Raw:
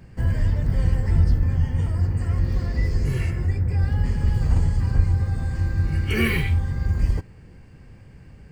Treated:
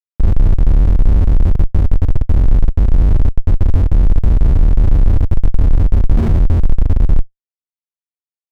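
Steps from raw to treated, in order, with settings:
comparator with hysteresis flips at −18 dBFS
spectral tilt −3.5 dB per octave
level −2 dB

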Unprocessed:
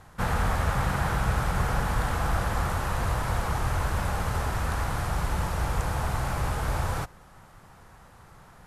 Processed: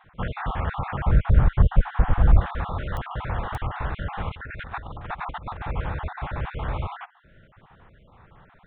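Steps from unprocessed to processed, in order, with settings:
time-frequency cells dropped at random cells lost 36%
0:01.04–0:02.40: spectral tilt −3 dB per octave
0:04.29–0:05.61: compressor whose output falls as the input rises −33 dBFS, ratio −0.5
downsampling to 8,000 Hz
digital clicks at 0:02.97/0:03.55, −17 dBFS
highs frequency-modulated by the lows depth 0.13 ms

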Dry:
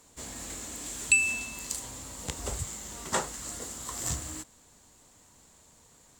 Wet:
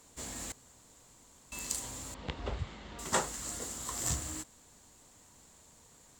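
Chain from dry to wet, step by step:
0:00.52–0:01.52: fill with room tone
0:02.14–0:02.99: low-pass filter 3,700 Hz 24 dB per octave
level −1 dB

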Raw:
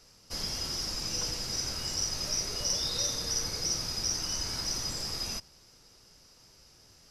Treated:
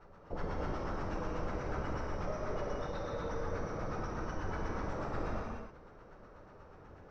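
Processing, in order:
notch filter 4,900 Hz, Q 6.1
downward compressor, threshold −38 dBFS, peak gain reduction 10.5 dB
auto-filter low-pass sine 8.2 Hz 470–1,500 Hz
reverb whose tail is shaped and stops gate 330 ms flat, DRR −2.5 dB
level +3 dB

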